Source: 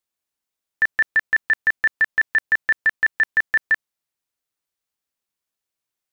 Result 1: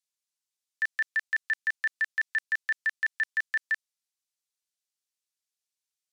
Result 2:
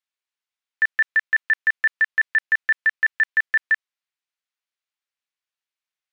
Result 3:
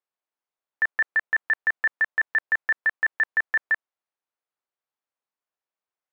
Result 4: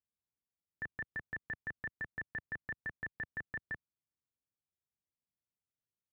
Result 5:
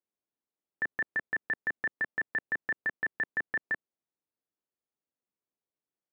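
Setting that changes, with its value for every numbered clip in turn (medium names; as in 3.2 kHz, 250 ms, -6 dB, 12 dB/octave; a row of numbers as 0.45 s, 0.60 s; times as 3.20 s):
band-pass filter, frequency: 6.3 kHz, 2.3 kHz, 850 Hz, 100 Hz, 310 Hz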